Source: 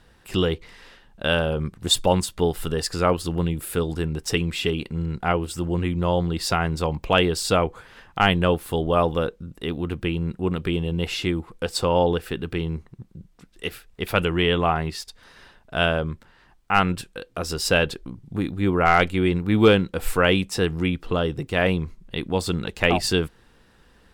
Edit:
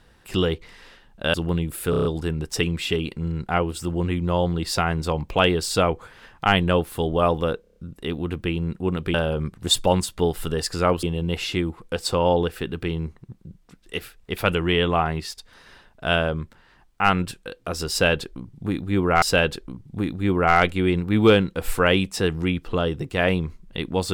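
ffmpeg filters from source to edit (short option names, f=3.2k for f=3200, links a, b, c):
-filter_complex "[0:a]asplit=15[a][b][c][d][e][f][g][h][i][j][k][l][m][n][o];[a]atrim=end=1.342[p];[b]atrim=start=3.228:end=3.822[q];[c]atrim=start=3.788:end=3.822[r];[d]atrim=start=3.788:end=3.822[s];[e]atrim=start=3.788:end=3.822[t];[f]atrim=start=3.788:end=3.822[u];[g]atrim=start=3.788:end=9.382[v];[h]atrim=start=9.348:end=9.382[w];[i]atrim=start=9.348:end=9.382[x];[j]atrim=start=9.348:end=9.382[y];[k]atrim=start=9.348:end=9.382[z];[l]atrim=start=9.348:end=10.732[aa];[m]atrim=start=1.338:end=3.232[ab];[n]atrim=start=10.728:end=18.922[ac];[o]atrim=start=17.598[ad];[p][q]acrossfade=d=0.004:c1=hsin:c2=hsin[ae];[ae][r]acrossfade=d=0.004:c1=hsin:c2=hsin[af];[af][s]acrossfade=d=0.004:c1=hsin:c2=hsin[ag];[ag][t]acrossfade=d=0.004:c1=hsin:c2=hsin[ah];[ah][u]acrossfade=d=0.004:c1=hsin:c2=hsin[ai];[ai][v]acrossfade=d=0.004:c1=hsin:c2=hsin[aj];[aj][w]acrossfade=d=0.004:c1=hsin:c2=hsin[ak];[ak][x]acrossfade=d=0.004:c1=hsin:c2=hsin[al];[al][y]acrossfade=d=0.004:c1=hsin:c2=hsin[am];[am][z]acrossfade=d=0.004:c1=hsin:c2=hsin[an];[an][aa]acrossfade=d=0.004:c1=hsin:c2=hsin[ao];[ao][ab]acrossfade=d=0.004:c1=hsin:c2=hsin[ap];[ap][ac]acrossfade=d=0.004:c1=hsin:c2=hsin[aq];[aq][ad]acrossfade=d=0.004:c1=hsin:c2=hsin"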